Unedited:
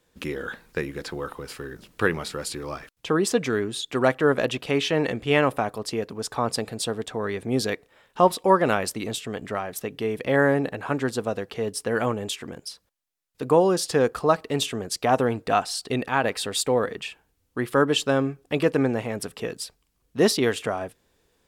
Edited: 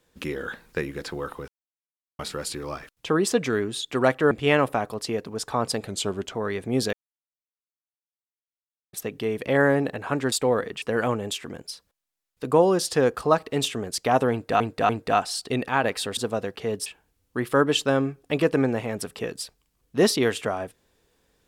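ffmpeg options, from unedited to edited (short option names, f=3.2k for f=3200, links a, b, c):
-filter_complex "[0:a]asplit=14[a][b][c][d][e][f][g][h][i][j][k][l][m][n];[a]atrim=end=1.48,asetpts=PTS-STARTPTS,afade=t=out:st=1.476:d=0.004:c=hsin[o];[b]atrim=start=1.48:end=2.19,asetpts=PTS-STARTPTS,volume=0[p];[c]atrim=start=2.19:end=4.312,asetpts=PTS-STARTPTS,afade=t=in:d=0.004:c=hsin[q];[d]atrim=start=5.148:end=6.714[r];[e]atrim=start=6.71:end=7.12,asetpts=PTS-STARTPTS,asetrate=39249,aresample=44100[s];[f]atrim=start=7.116:end=7.72,asetpts=PTS-STARTPTS,afade=t=out:st=0.6:d=0.004:c=hsin[t];[g]atrim=start=7.72:end=9.72,asetpts=PTS-STARTPTS,volume=0[u];[h]atrim=start=9.72:end=11.112,asetpts=PTS-STARTPTS,afade=t=in:d=0.004:c=hsin[v];[i]atrim=start=16.568:end=17.072[w];[j]atrim=start=11.798:end=15.582[x];[k]atrim=start=15.288:end=15.582[y];[l]atrim=start=15.288:end=16.572[z];[m]atrim=start=11.108:end=11.802[aa];[n]atrim=start=17.068[ab];[o][p][q]concat=n=3:v=0:a=1[ac];[ac][r]acrossfade=d=0.004:c1=hsin:c2=hsin[ad];[ad][s]acrossfade=d=0.004:c1=hsin:c2=hsin[ae];[t][u][v]concat=n=3:v=0:a=1[af];[ae][af]acrossfade=d=0.004:c1=hsin:c2=hsin[ag];[ag][w]acrossfade=d=0.004:c1=hsin:c2=hsin[ah];[ah][x]acrossfade=d=0.004:c1=hsin:c2=hsin[ai];[ai][y]acrossfade=d=0.004:c1=hsin:c2=hsin[aj];[aj][z]acrossfade=d=0.004:c1=hsin:c2=hsin[ak];[ak][aa]acrossfade=d=0.004:c1=hsin:c2=hsin[al];[al][ab]acrossfade=d=0.004:c1=hsin:c2=hsin"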